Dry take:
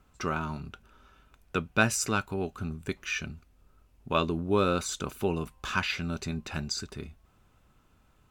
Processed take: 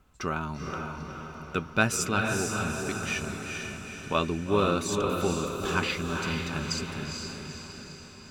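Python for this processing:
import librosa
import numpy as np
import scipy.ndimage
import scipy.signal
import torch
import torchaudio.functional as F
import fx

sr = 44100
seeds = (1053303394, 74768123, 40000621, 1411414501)

y = fx.echo_diffused(x, sr, ms=457, feedback_pct=56, wet_db=-3.5)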